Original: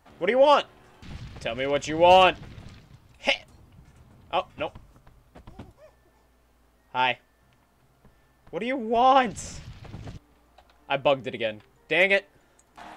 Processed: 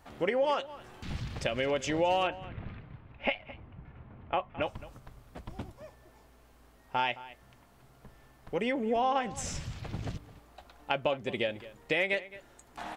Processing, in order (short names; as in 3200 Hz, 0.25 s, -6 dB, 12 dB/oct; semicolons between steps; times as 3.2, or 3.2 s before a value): 2.27–4.62 LPF 2600 Hz 24 dB/oct; compressor 4:1, threshold -31 dBFS, peak gain reduction 16 dB; outdoor echo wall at 37 m, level -17 dB; gain +3 dB